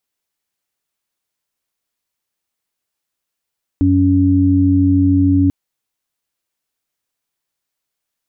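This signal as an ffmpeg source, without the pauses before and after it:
-f lavfi -i "aevalsrc='0.2*sin(2*PI*93.3*t)+0.0398*sin(2*PI*186.6*t)+0.282*sin(2*PI*279.9*t)':d=1.69:s=44100"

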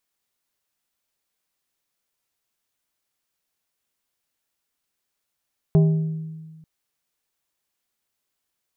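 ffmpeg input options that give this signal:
-f lavfi -i "aevalsrc='0.282*pow(10,-3*t/1.57)*sin(2*PI*159*t)+0.1*pow(10,-3*t/0.827)*sin(2*PI*397.5*t)+0.0355*pow(10,-3*t/0.595)*sin(2*PI*636*t)+0.0126*pow(10,-3*t/0.509)*sin(2*PI*795*t)+0.00447*pow(10,-3*t/0.424)*sin(2*PI*1033.5*t)':d=0.89:s=44100"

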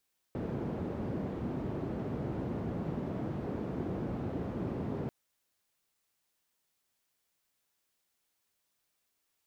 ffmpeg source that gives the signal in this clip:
-f lavfi -i "anoisesrc=c=white:d=4.74:r=44100:seed=1,highpass=f=85,lowpass=f=300,volume=-11.6dB"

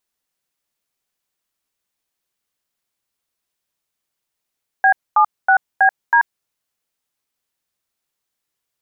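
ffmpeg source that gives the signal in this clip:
-f lavfi -i "aevalsrc='0.266*clip(min(mod(t,0.322),0.085-mod(t,0.322))/0.002,0,1)*(eq(floor(t/0.322),0)*(sin(2*PI*770*mod(t,0.322))+sin(2*PI*1633*mod(t,0.322)))+eq(floor(t/0.322),1)*(sin(2*PI*852*mod(t,0.322))+sin(2*PI*1209*mod(t,0.322)))+eq(floor(t/0.322),2)*(sin(2*PI*770*mod(t,0.322))+sin(2*PI*1477*mod(t,0.322)))+eq(floor(t/0.322),3)*(sin(2*PI*770*mod(t,0.322))+sin(2*PI*1633*mod(t,0.322)))+eq(floor(t/0.322),4)*(sin(2*PI*941*mod(t,0.322))+sin(2*PI*1633*mod(t,0.322))))':d=1.61:s=44100"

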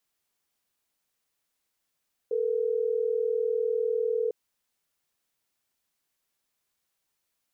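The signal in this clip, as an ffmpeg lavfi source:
-f lavfi -i "aevalsrc='0.0447*(sin(2*PI*440*t)+sin(2*PI*480*t))*clip(min(mod(t,6),2-mod(t,6))/0.005,0,1)':d=3.12:s=44100"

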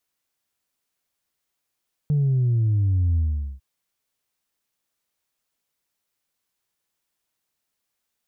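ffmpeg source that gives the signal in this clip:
-f lavfi -i "aevalsrc='0.133*clip((1.5-t)/0.43,0,1)*tanh(1.06*sin(2*PI*150*1.5/log(65/150)*(exp(log(65/150)*t/1.5)-1)))/tanh(1.06)':d=1.5:s=44100"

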